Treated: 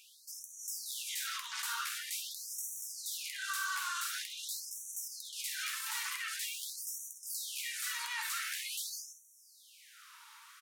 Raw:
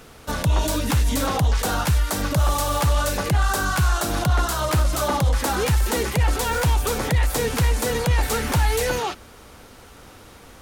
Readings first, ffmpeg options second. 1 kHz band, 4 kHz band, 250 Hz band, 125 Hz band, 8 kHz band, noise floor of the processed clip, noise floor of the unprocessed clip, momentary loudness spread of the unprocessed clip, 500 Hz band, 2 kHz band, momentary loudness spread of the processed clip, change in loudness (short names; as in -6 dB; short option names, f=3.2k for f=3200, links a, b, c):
-20.0 dB, -9.5 dB, under -40 dB, under -40 dB, -9.0 dB, -61 dBFS, -46 dBFS, 2 LU, under -40 dB, -12.0 dB, 14 LU, -16.0 dB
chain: -filter_complex "[0:a]acrossover=split=1100[a][b];[a]acompressor=threshold=-33dB:ratio=6[c];[c][b]amix=inputs=2:normalize=0,alimiter=limit=-20.5dB:level=0:latency=1:release=18,aecho=1:1:50|64:0.299|0.299,afftfilt=real='re*gte(b*sr/1024,830*pow(5700/830,0.5+0.5*sin(2*PI*0.46*pts/sr)))':imag='im*gte(b*sr/1024,830*pow(5700/830,0.5+0.5*sin(2*PI*0.46*pts/sr)))':win_size=1024:overlap=0.75,volume=-7dB"